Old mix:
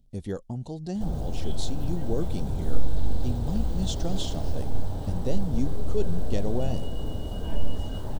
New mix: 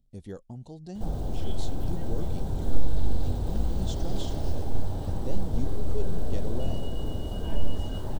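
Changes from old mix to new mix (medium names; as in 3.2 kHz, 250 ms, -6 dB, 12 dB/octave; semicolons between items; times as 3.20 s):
speech -7.5 dB; background: remove band-stop 360 Hz, Q 12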